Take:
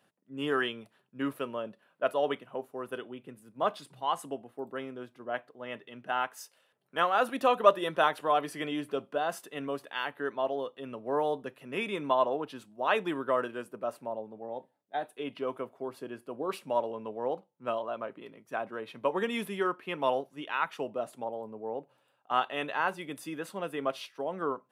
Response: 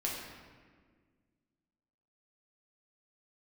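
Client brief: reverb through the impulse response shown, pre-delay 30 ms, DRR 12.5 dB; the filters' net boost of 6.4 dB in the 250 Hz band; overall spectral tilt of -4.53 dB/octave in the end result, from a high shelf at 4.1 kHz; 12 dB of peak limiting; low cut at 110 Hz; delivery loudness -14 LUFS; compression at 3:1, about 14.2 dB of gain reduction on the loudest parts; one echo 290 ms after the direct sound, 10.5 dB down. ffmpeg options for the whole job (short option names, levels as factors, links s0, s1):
-filter_complex "[0:a]highpass=110,equalizer=f=250:t=o:g=8,highshelf=f=4100:g=-6.5,acompressor=threshold=0.02:ratio=3,alimiter=level_in=2.66:limit=0.0631:level=0:latency=1,volume=0.376,aecho=1:1:290:0.299,asplit=2[s0][s1];[1:a]atrim=start_sample=2205,adelay=30[s2];[s1][s2]afir=irnorm=-1:irlink=0,volume=0.15[s3];[s0][s3]amix=inputs=2:normalize=0,volume=25.1"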